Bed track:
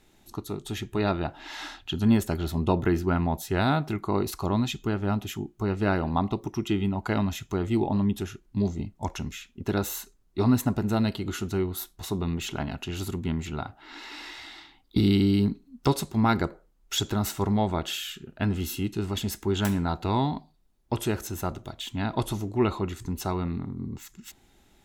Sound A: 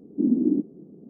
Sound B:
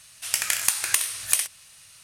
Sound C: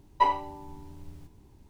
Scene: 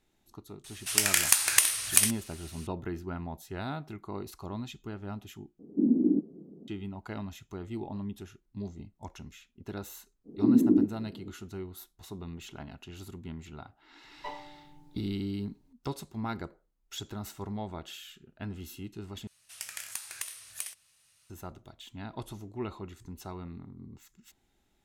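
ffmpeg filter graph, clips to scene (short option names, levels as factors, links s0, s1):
-filter_complex "[2:a]asplit=2[s0][s1];[1:a]asplit=2[s2][s3];[0:a]volume=0.237[s4];[3:a]aecho=1:1:6.6:1[s5];[s4]asplit=3[s6][s7][s8];[s6]atrim=end=5.594[s9];[s2]atrim=end=1.09,asetpts=PTS-STARTPTS,volume=0.708[s10];[s7]atrim=start=6.676:end=19.274[s11];[s1]atrim=end=2.03,asetpts=PTS-STARTPTS,volume=0.158[s12];[s8]atrim=start=21.296[s13];[s0]atrim=end=2.03,asetpts=PTS-STARTPTS,afade=t=in:d=0.004:c=hsin,afade=t=out:st=2.026:d=0.004:c=hsin,adelay=640[s14];[s3]atrim=end=1.09,asetpts=PTS-STARTPTS,volume=0.944,afade=t=in:d=0.05,afade=t=out:st=1.04:d=0.05,adelay=10240[s15];[s5]atrim=end=1.69,asetpts=PTS-STARTPTS,volume=0.188,afade=t=in:d=0.004:c=hsin,afade=t=out:st=1.686:d=0.004:c=hsin,adelay=14040[s16];[s9][s10]acrossfade=d=0.004:c1=hsin:c2=hsin[s17];[s17][s11]acrossfade=d=0.004:c1=hsin:c2=hsin[s18];[s18][s12]acrossfade=d=0.004:c1=hsin:c2=hsin[s19];[s19][s13]acrossfade=d=0.004:c1=hsin:c2=hsin[s20];[s20][s14][s15][s16]amix=inputs=4:normalize=0"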